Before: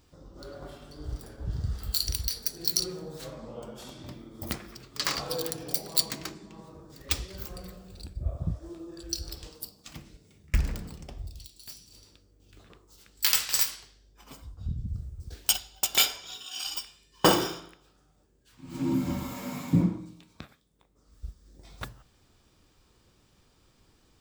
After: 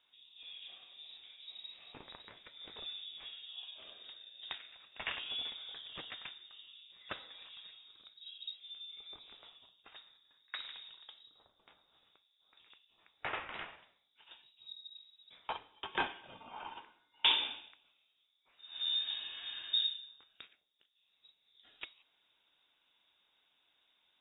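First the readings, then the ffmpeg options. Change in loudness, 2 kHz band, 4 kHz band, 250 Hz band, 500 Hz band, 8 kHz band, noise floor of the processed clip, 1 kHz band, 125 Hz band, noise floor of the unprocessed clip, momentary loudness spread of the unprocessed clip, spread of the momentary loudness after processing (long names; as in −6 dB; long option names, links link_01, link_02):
−10.0 dB, −5.5 dB, −4.5 dB, −26.0 dB, −18.0 dB, below −40 dB, −77 dBFS, −8.5 dB, −32.5 dB, −65 dBFS, 22 LU, 22 LU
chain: -af "highpass=210,asoftclip=type=hard:threshold=-14dB,lowpass=frequency=3300:width_type=q:width=0.5098,lowpass=frequency=3300:width_type=q:width=0.6013,lowpass=frequency=3300:width_type=q:width=0.9,lowpass=frequency=3300:width_type=q:width=2.563,afreqshift=-3900,volume=-6dB"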